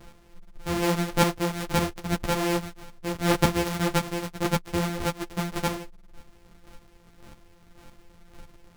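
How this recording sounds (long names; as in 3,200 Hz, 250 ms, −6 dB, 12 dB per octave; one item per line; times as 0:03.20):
a buzz of ramps at a fixed pitch in blocks of 256 samples
chopped level 1.8 Hz, depth 60%, duty 20%
a shimmering, thickened sound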